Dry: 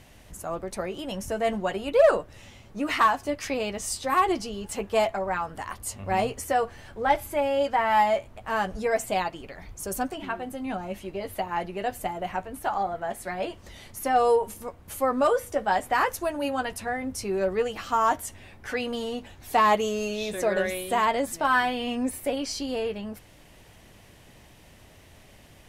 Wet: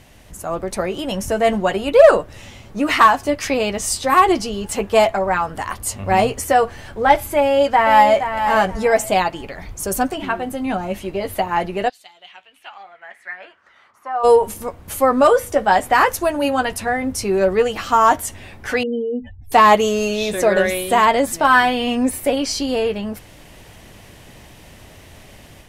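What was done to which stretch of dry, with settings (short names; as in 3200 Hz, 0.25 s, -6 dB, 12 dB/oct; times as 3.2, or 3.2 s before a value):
7.39–8.27 echo throw 0.47 s, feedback 20%, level -8.5 dB
11.88–14.23 band-pass 4400 Hz -> 1000 Hz, Q 4.7
18.83–19.52 spectral contrast raised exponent 3.1
whole clip: AGC gain up to 5 dB; gain +4.5 dB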